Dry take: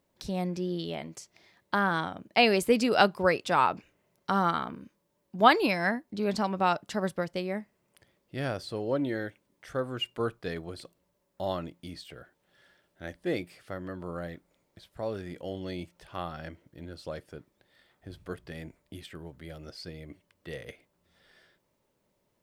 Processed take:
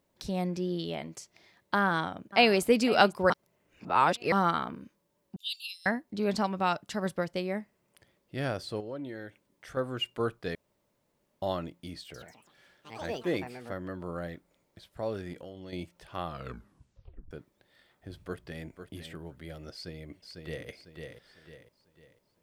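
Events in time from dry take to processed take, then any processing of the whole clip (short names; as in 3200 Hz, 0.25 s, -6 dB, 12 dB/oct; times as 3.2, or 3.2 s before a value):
1.82–2.62 echo throw 0.5 s, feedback 10%, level -16.5 dB
3.3–4.32 reverse
5.36–5.86 rippled Chebyshev high-pass 2700 Hz, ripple 6 dB
6.46–7.06 bell 550 Hz -3.5 dB 2.5 oct
8.8–9.77 compressor 2:1, threshold -43 dBFS
10.55–11.42 room tone
12–14.12 echoes that change speed 0.141 s, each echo +5 st, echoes 3, each echo -6 dB
15.33–15.73 compressor, threshold -40 dBFS
16.26 tape stop 1.05 s
18.26–18.66 echo throw 0.5 s, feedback 15%, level -9 dB
19.72–20.68 echo throw 0.5 s, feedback 40%, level -4.5 dB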